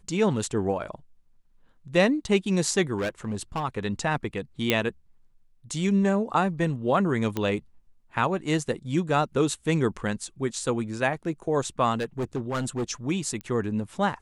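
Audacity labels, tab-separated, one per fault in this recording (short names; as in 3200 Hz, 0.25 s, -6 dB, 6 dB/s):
2.980000	3.640000	clipped -24 dBFS
4.700000	4.700000	pop -7 dBFS
7.370000	7.370000	pop -14 dBFS
11.950000	12.840000	clipped -24 dBFS
13.410000	13.410000	pop -22 dBFS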